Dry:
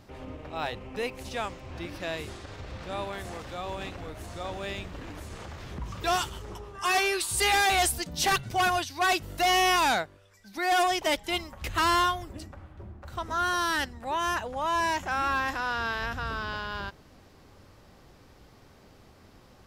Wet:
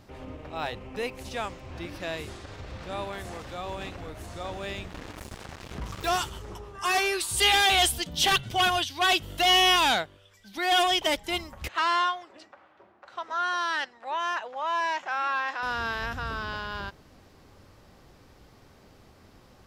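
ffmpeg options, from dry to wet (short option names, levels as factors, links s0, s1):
-filter_complex "[0:a]asettb=1/sr,asplit=3[s0][s1][s2];[s0]atrim=end=4.904[s3];[s1]atrim=start=4.9:end=6.09,asetpts=PTS-STARTPTS,afade=t=in:d=0.004:c=qsin,afade=t=out:st=1.186:d=0.004:c=qsin,acrusher=bits=5:mix=0:aa=0.5[s4];[s2]atrim=start=6.086[s5];[s3][s4]acrossfade=d=0.004:c1=hsin:c2=qsin[s6];[s6][s5]acrossfade=d=0.004:c1=qsin:c2=hsin,asettb=1/sr,asplit=3[s7][s8][s9];[s7]atrim=end=7.364[s10];[s8]atrim=start=7.36:end=11.07,asetpts=PTS-STARTPTS,afade=t=in:d=0.004:c=qsin,afade=t=out:st=3.706:d=0.004:c=qsin,equalizer=f=3200:t=o:w=0.38:g=12[s11];[s9]atrim=start=11.066[s12];[s10][s11]acrossfade=d=0.004:c1=hsin:c2=qsin[s13];[s13][s12]acrossfade=d=0.004:c1=qsin:c2=hsin,asettb=1/sr,asplit=3[s14][s15][s16];[s14]atrim=end=11.684[s17];[s15]atrim=start=11.68:end=15.63,asetpts=PTS-STARTPTS,afade=t=in:d=0.004:c=qsin,afade=t=out:st=3.946:d=0.004:c=qsin,highpass=570,lowpass=4300[s18];[s16]atrim=start=15.626[s19];[s17][s18]acrossfade=d=0.004:c1=hsin:c2=qsin[s20];[s20][s19]acrossfade=d=0.004:c1=qsin:c2=hsin"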